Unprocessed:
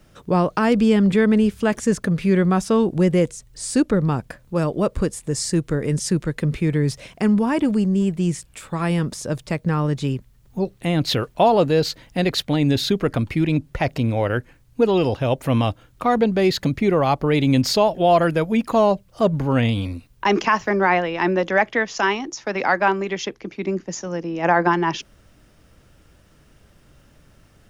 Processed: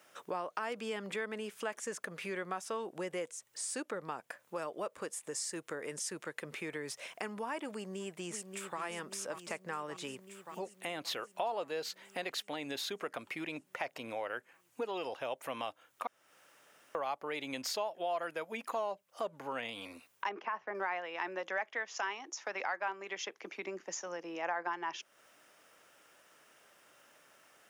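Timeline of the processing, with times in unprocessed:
0:07.72–0:08.80: delay throw 580 ms, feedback 70%, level −8 dB
0:16.07–0:16.95: fill with room tone
0:20.29–0:20.75: head-to-tape spacing loss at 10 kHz 37 dB
whole clip: high-pass filter 660 Hz 12 dB per octave; parametric band 4,300 Hz −5.5 dB 0.65 octaves; downward compressor 2.5 to 1, threshold −39 dBFS; level −1.5 dB

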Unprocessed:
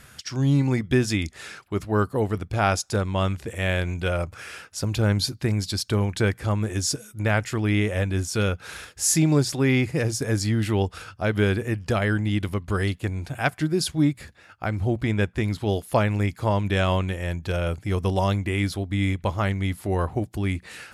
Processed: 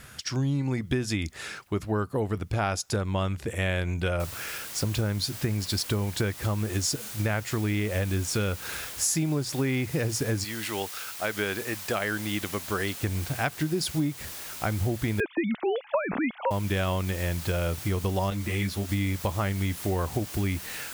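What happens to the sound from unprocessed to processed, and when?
0:04.20: noise floor change −69 dB −41 dB
0:10.43–0:12.99: high-pass filter 1,300 Hz → 310 Hz 6 dB per octave
0:15.20–0:16.51: three sine waves on the formant tracks
0:18.30–0:18.89: string-ensemble chorus
whole clip: downward compressor, threshold −25 dBFS; level +1.5 dB

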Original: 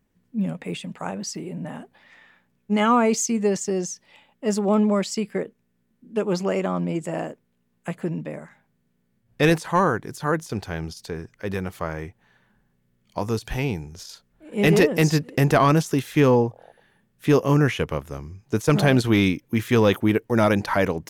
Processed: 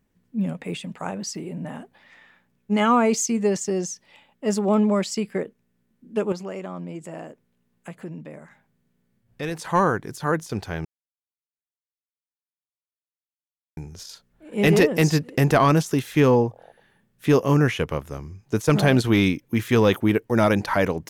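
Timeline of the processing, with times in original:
0:06.32–0:09.59: downward compressor 1.5 to 1, threshold −46 dBFS
0:10.85–0:13.77: silence

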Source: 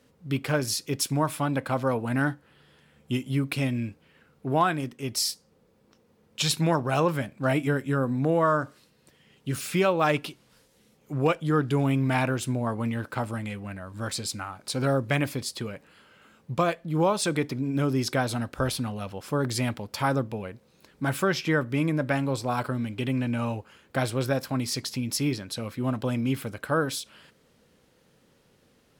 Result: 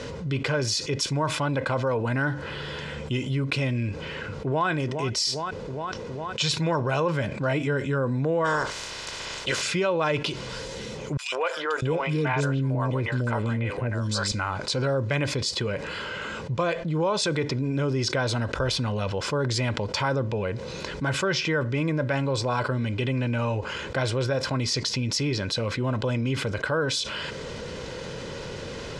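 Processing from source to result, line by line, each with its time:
0:03.87–0:04.68: delay throw 410 ms, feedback 65%, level −18 dB
0:08.44–0:09.61: ceiling on every frequency bin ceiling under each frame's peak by 26 dB
0:11.17–0:14.32: three-band delay without the direct sound highs, mids, lows 150/650 ms, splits 520/3,100 Hz
whole clip: low-pass filter 6,900 Hz 24 dB per octave; comb filter 2 ms, depth 43%; envelope flattener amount 70%; level −5 dB

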